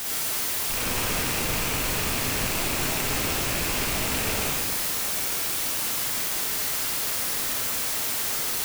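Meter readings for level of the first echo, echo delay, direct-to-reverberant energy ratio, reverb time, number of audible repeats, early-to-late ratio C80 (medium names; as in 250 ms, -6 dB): no echo, no echo, -5.0 dB, 1.6 s, no echo, -0.5 dB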